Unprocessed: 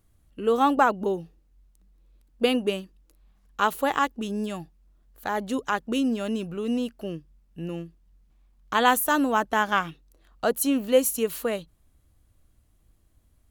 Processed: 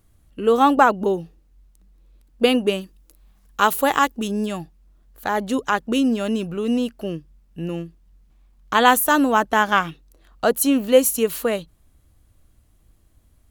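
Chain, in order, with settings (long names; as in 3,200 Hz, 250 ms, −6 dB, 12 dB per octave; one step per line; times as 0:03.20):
0:02.81–0:04.28: high-shelf EQ 6,500 Hz +8 dB
level +5.5 dB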